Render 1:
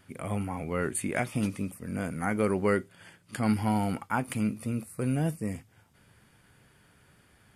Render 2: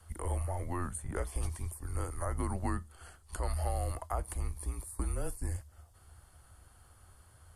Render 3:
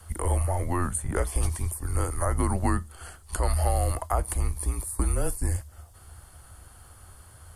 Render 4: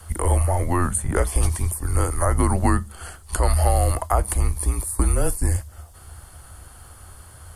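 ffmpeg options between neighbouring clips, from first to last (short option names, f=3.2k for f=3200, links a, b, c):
-filter_complex "[0:a]equalizer=f=100:t=o:w=0.67:g=11,equalizer=f=400:t=o:w=0.67:g=-5,equalizer=f=1k:t=o:w=0.67:g=4,equalizer=f=2.5k:t=o:w=0.67:g=-10,equalizer=f=10k:t=o:w=0.67:g=7,acrossover=split=470|1300[a][b][c];[a]acompressor=threshold=-32dB:ratio=4[d];[b]acompressor=threshold=-38dB:ratio=4[e];[c]acompressor=threshold=-42dB:ratio=4[f];[d][e][f]amix=inputs=3:normalize=0,afreqshift=-180,volume=-1dB"
-af "highshelf=f=9.1k:g=4.5,volume=9dB"
-af "bandreject=f=102.7:t=h:w=4,bandreject=f=205.4:t=h:w=4,volume=6dB"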